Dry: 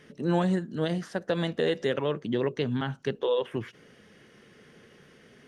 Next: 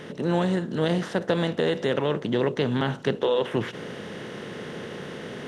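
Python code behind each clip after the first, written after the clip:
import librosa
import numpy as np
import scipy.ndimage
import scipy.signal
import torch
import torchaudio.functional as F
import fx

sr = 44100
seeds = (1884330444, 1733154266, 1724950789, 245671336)

y = fx.bin_compress(x, sr, power=0.6)
y = fx.rider(y, sr, range_db=3, speed_s=0.5)
y = F.gain(torch.from_numpy(y), 1.0).numpy()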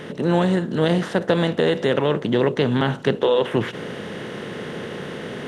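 y = fx.peak_eq(x, sr, hz=5600.0, db=-3.5, octaves=0.65)
y = F.gain(torch.from_numpy(y), 5.0).numpy()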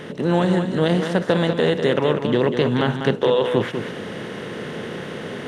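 y = x + 10.0 ** (-7.5 / 20.0) * np.pad(x, (int(196 * sr / 1000.0), 0))[:len(x)]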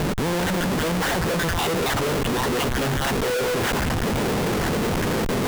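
y = fx.spec_dropout(x, sr, seeds[0], share_pct=25)
y = fx.schmitt(y, sr, flips_db=-34.5)
y = fx.end_taper(y, sr, db_per_s=270.0)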